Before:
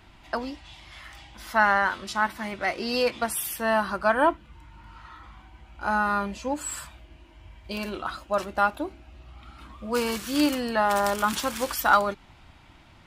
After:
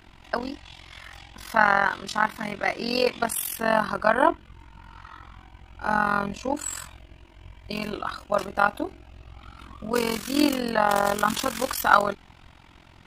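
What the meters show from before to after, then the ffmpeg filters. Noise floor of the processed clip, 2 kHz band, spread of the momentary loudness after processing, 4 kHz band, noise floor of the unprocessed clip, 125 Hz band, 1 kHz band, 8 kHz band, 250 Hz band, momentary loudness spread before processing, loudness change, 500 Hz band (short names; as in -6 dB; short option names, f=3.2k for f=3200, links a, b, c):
-52 dBFS, +1.0 dB, 20 LU, +1.0 dB, -53 dBFS, +3.0 dB, +1.5 dB, +1.0 dB, +1.0 dB, 20 LU, +1.0 dB, +1.0 dB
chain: -af "tremolo=f=44:d=0.857,volume=5dB"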